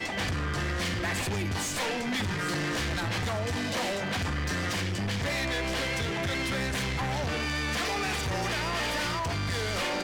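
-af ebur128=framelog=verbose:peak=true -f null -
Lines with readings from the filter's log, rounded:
Integrated loudness:
  I:         -29.6 LUFS
  Threshold: -39.6 LUFS
Loudness range:
  LRA:         0.5 LU
  Threshold: -49.6 LUFS
  LRA low:   -29.9 LUFS
  LRA high:  -29.3 LUFS
True peak:
  Peak:      -24.3 dBFS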